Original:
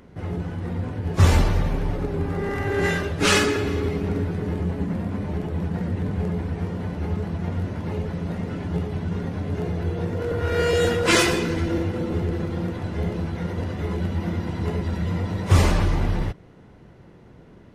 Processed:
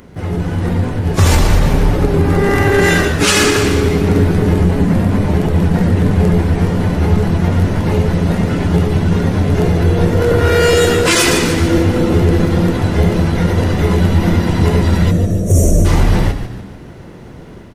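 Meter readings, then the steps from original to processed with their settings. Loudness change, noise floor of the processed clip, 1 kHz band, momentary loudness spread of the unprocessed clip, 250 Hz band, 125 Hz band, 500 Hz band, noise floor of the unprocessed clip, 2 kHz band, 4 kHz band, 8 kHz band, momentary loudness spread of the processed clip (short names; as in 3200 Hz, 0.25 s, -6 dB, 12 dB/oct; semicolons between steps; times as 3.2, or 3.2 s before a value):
+11.0 dB, -34 dBFS, +10.0 dB, 10 LU, +12.0 dB, +11.5 dB, +11.0 dB, -48 dBFS, +9.5 dB, +9.5 dB, +12.0 dB, 4 LU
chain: spectral gain 15.11–15.85, 730–5500 Hz -24 dB; high shelf 5500 Hz +8.5 dB; AGC gain up to 5 dB; on a send: frequency-shifting echo 0.146 s, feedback 45%, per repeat -77 Hz, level -11 dB; on the sum: maximiser +9.5 dB; gain -1 dB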